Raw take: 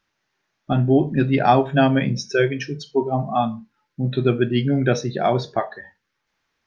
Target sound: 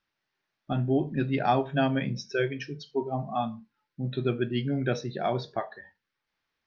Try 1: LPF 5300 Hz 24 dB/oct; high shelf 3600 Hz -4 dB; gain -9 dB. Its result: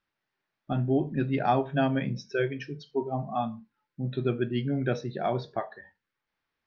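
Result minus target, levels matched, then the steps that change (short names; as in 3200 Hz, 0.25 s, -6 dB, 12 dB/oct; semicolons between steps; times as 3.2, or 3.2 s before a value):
8000 Hz band -5.5 dB
change: high shelf 3600 Hz +4 dB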